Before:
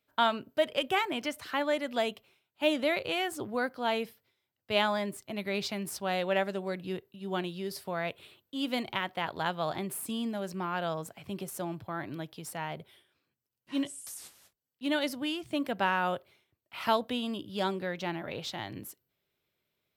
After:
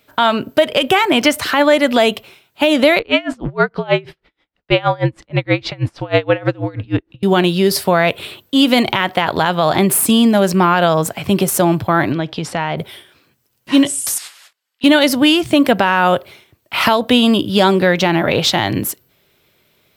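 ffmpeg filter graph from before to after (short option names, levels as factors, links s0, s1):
-filter_complex "[0:a]asettb=1/sr,asplit=3[s0][s1][s2];[s0]atrim=end=2.994[s3];[s1]atrim=start=2.99:end=7.23,asetpts=PTS-STARTPTS,afade=t=in:d=0.004:c=qsin,afade=t=out:st=4.236:d=0.004:c=qsin,lowpass=3100,afreqshift=-68,aeval=exprs='val(0)*pow(10,-29*(0.5-0.5*cos(2*PI*6.3*n/s))/20)':c=same[s4];[s2]atrim=start=7.226[s5];[s3][s4]acrossfade=d=0.004:c1=hsin:c2=qsin[s6];[s6][s5]acrossfade=d=0.004:c1=qsin:c2=hsin,asettb=1/sr,asplit=3[s7][s8][s9];[s7]atrim=end=12.124[s10];[s8]atrim=start=12.12:end=12.78,asetpts=PTS-STARTPTS,afade=t=in:d=0.004:c=qsin,afade=t=out:st=0.656:d=0.004:c=qsin,acompressor=threshold=0.01:ratio=2.5:attack=3.2:release=140:knee=1:detection=peak,lowpass=4700[s11];[s9]atrim=start=12.776[s12];[s10][s11]acrossfade=d=0.004:c1=hsin:c2=qsin[s13];[s13][s12]acrossfade=d=0.004:c1=qsin:c2=hsin,asettb=1/sr,asplit=3[s14][s15][s16];[s14]atrim=end=14.184[s17];[s15]atrim=start=14.18:end=14.84,asetpts=PTS-STARTPTS,afade=t=in:d=0.004:c=qsin,afade=t=out:st=0.656:d=0.004:c=qsin,highpass=1400,aemphasis=mode=reproduction:type=bsi,bandreject=f=5900:w=16[s18];[s16]atrim=start=14.836[s19];[s17][s18]acrossfade=d=0.004:c1=hsin:c2=qsin[s20];[s20][s19]acrossfade=d=0.004:c1=qsin:c2=hsin,acompressor=threshold=0.0316:ratio=6,alimiter=level_in=16.8:limit=0.891:release=50:level=0:latency=1,volume=0.891"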